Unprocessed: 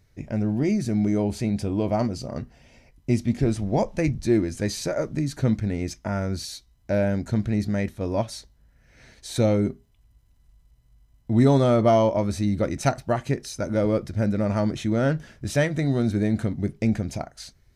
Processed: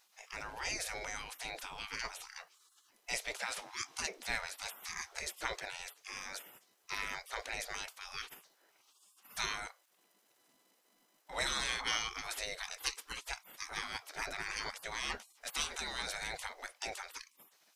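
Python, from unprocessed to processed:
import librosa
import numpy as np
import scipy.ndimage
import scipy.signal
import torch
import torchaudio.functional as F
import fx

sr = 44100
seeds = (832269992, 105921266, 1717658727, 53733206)

y = fx.spec_gate(x, sr, threshold_db=-30, keep='weak')
y = y * librosa.db_to_amplitude(6.5)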